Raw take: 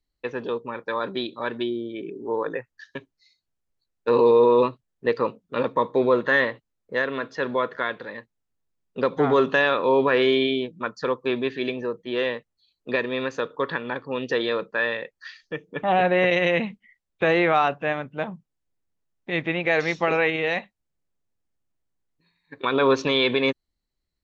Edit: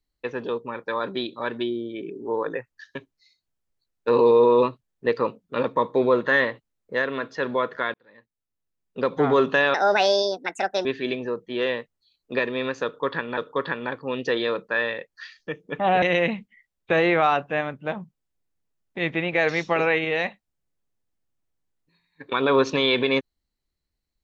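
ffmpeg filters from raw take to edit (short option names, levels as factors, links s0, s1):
-filter_complex "[0:a]asplit=6[s0][s1][s2][s3][s4][s5];[s0]atrim=end=7.94,asetpts=PTS-STARTPTS,afade=t=out:st=7.936:d=0.004:c=hsin[s6];[s1]atrim=start=7.94:end=9.744,asetpts=PTS-STARTPTS,afade=t=in:d=1.25[s7];[s2]atrim=start=9.74:end=11.42,asetpts=PTS-STARTPTS,asetrate=66591,aresample=44100[s8];[s3]atrim=start=11.416:end=13.942[s9];[s4]atrim=start=13.408:end=16.062[s10];[s5]atrim=start=16.338[s11];[s6][s7]concat=n=2:v=0:a=1[s12];[s12][s8]acrossfade=d=0.004:c1=hsin:c2=hsin[s13];[s13][s9]acrossfade=d=0.004:c1=hsin:c2=hsin[s14];[s14][s10]acrossfade=d=0.004:c1=hsin:c2=hsin[s15];[s15][s11]acrossfade=d=0.004:c1=hsin:c2=hsin"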